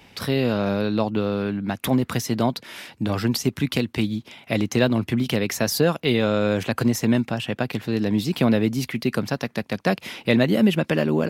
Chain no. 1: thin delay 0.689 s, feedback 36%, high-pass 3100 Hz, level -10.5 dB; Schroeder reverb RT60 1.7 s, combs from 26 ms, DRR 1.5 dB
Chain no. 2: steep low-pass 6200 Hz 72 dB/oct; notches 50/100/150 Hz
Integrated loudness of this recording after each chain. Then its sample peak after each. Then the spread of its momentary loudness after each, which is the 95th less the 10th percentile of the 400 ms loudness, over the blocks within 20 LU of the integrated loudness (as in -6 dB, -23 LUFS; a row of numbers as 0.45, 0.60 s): -20.5, -23.0 LUFS; -2.5, -4.5 dBFS; 6, 7 LU